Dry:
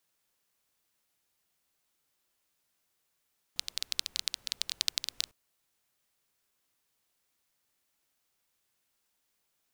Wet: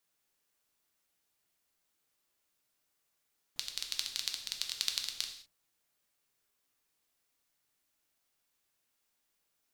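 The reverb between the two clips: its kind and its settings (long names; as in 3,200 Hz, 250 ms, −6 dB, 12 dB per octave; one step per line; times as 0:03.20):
reverb whose tail is shaped and stops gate 230 ms falling, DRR 3 dB
level −3.5 dB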